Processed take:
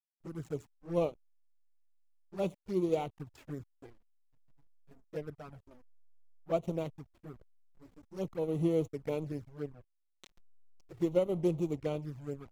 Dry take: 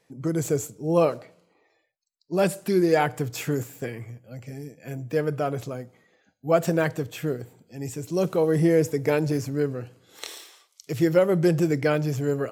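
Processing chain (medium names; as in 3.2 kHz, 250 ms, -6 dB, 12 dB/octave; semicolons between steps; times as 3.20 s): hysteresis with a dead band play -24 dBFS; touch-sensitive flanger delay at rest 7.5 ms, full sweep at -19.5 dBFS; upward expansion 1.5:1, over -32 dBFS; trim -7 dB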